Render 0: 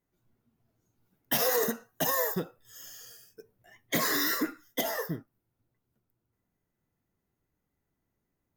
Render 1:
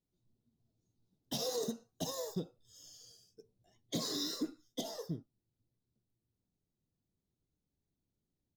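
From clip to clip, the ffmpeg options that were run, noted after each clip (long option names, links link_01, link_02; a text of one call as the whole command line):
ffmpeg -i in.wav -af "firequalizer=gain_entry='entry(160,0);entry(1800,-23);entry(3800,2);entry(14000,-19)':delay=0.05:min_phase=1,volume=-4dB" out.wav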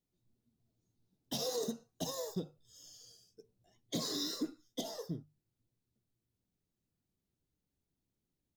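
ffmpeg -i in.wav -af "bandreject=frequency=50:width_type=h:width=6,bandreject=frequency=100:width_type=h:width=6,bandreject=frequency=150:width_type=h:width=6" out.wav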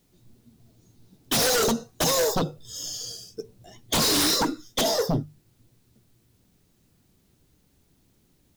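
ffmpeg -i in.wav -af "aeval=exprs='0.0631*sin(PI/2*4.47*val(0)/0.0631)':channel_layout=same,volume=5.5dB" out.wav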